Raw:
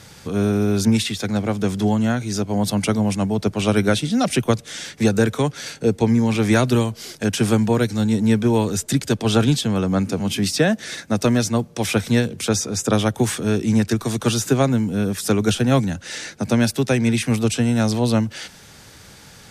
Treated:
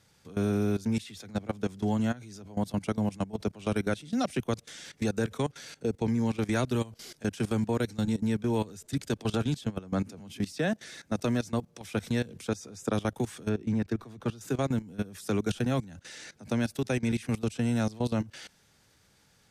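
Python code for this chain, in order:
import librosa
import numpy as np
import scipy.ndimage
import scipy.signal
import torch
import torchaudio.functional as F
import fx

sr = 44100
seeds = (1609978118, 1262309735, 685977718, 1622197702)

y = fx.level_steps(x, sr, step_db=19)
y = fx.peak_eq(y, sr, hz=9400.0, db=-14.5, octaves=2.2, at=(13.49, 14.41))
y = F.gain(torch.from_numpy(y), -7.5).numpy()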